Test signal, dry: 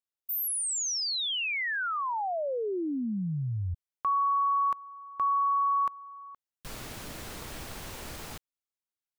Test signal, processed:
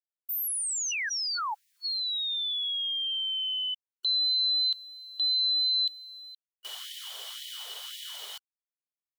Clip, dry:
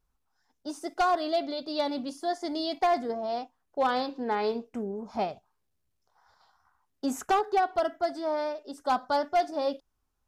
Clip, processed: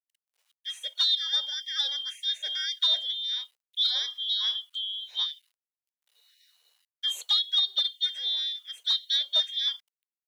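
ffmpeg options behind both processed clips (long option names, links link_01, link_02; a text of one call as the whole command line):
ffmpeg -i in.wav -af "afftfilt=real='real(if(lt(b,272),68*(eq(floor(b/68),0)*1+eq(floor(b/68),1)*3+eq(floor(b/68),2)*0+eq(floor(b/68),3)*2)+mod(b,68),b),0)':imag='imag(if(lt(b,272),68*(eq(floor(b/68),0)*1+eq(floor(b/68),1)*3+eq(floor(b/68),2)*0+eq(floor(b/68),3)*2)+mod(b,68),b),0)':win_size=2048:overlap=0.75,acrusher=bits=10:mix=0:aa=0.000001,afftfilt=real='re*gte(b*sr/1024,370*pow(1800/370,0.5+0.5*sin(2*PI*1.9*pts/sr)))':imag='im*gte(b*sr/1024,370*pow(1800/370,0.5+0.5*sin(2*PI*1.9*pts/sr)))':win_size=1024:overlap=0.75" out.wav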